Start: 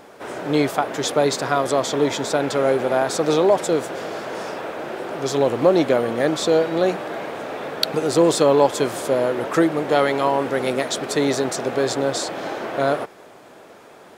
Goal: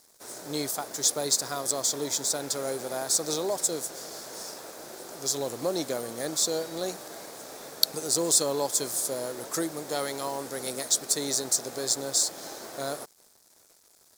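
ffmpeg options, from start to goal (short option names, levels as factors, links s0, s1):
-af "aeval=exprs='sgn(val(0))*max(abs(val(0))-0.00631,0)':c=same,aexciter=amount=8.8:drive=5.6:freq=4200,volume=0.211"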